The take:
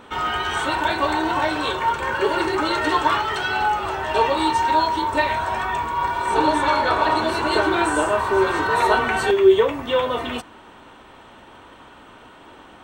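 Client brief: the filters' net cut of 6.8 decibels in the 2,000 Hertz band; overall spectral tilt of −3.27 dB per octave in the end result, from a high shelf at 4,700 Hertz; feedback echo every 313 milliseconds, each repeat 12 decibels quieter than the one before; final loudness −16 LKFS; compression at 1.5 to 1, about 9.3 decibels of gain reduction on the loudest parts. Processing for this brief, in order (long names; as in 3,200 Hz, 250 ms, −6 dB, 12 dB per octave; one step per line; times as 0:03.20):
parametric band 2,000 Hz −9 dB
high-shelf EQ 4,700 Hz −7.5 dB
downward compressor 1.5 to 1, threshold −35 dBFS
repeating echo 313 ms, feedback 25%, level −12 dB
level +12 dB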